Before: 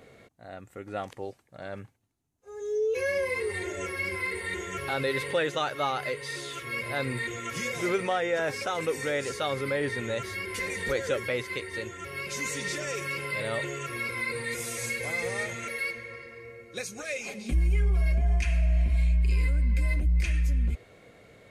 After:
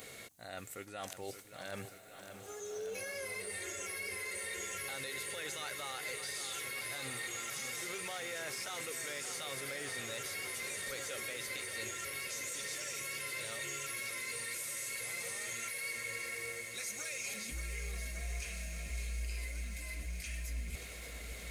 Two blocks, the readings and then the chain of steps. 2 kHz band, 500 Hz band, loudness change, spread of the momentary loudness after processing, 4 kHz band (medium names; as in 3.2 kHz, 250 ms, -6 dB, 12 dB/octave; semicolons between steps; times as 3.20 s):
-8.5 dB, -15.0 dB, -10.0 dB, 7 LU, -4.0 dB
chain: pre-emphasis filter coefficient 0.9; peak limiter -37 dBFS, peak gain reduction 11.5 dB; reverse; compression 8:1, threshold -57 dBFS, peak gain reduction 16 dB; reverse; echo that smears into a reverb 1531 ms, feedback 46%, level -10 dB; bit-crushed delay 577 ms, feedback 80%, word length 13-bit, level -9.5 dB; trim +17 dB